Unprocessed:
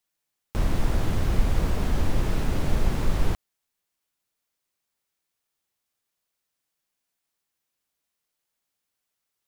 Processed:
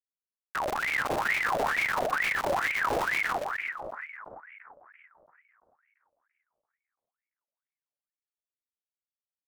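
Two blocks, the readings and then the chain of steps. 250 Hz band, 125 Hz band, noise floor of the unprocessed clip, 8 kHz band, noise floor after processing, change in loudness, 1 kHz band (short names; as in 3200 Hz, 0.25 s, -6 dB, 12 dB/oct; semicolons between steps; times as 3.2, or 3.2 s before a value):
-11.0 dB, -21.0 dB, -82 dBFS, -1.0 dB, under -85 dBFS, 0.0 dB, +8.5 dB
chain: reverb removal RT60 1.9 s; limiter -20.5 dBFS, peak gain reduction 11 dB; feedback echo 0.216 s, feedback 43%, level -22 dB; Schmitt trigger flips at -34.5 dBFS; on a send: split-band echo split 730 Hz, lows 0.339 s, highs 0.12 s, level -4 dB; on the sum: ring modulator with a swept carrier 1400 Hz, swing 60%, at 2.2 Hz; gain +7 dB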